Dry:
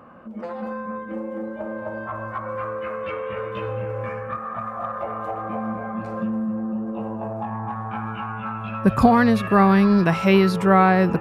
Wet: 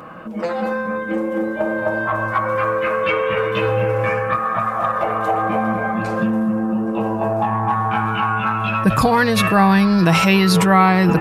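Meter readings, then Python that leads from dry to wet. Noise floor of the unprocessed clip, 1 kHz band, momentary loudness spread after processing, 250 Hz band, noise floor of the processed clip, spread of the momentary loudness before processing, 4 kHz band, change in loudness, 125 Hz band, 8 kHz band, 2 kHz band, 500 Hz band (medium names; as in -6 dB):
-33 dBFS, +6.0 dB, 9 LU, +3.0 dB, -25 dBFS, 15 LU, +11.0 dB, +4.5 dB, +5.0 dB, no reading, +8.0 dB, +4.5 dB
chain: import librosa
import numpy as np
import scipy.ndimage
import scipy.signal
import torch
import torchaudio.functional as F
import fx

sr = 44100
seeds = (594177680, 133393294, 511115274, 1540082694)

p1 = fx.high_shelf(x, sr, hz=2400.0, db=9.5)
p2 = fx.over_compress(p1, sr, threshold_db=-23.0, ratio=-0.5)
p3 = p1 + F.gain(torch.from_numpy(p2), 1.0).numpy()
y = p3 + 0.47 * np.pad(p3, (int(6.3 * sr / 1000.0), 0))[:len(p3)]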